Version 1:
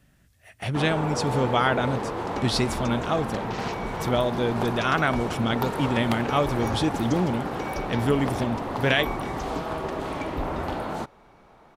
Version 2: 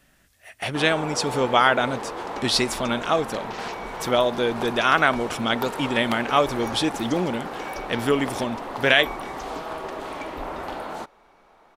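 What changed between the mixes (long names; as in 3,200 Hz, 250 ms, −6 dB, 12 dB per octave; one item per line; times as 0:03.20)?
speech +6.0 dB
master: add parametric band 99 Hz −14 dB 2.5 octaves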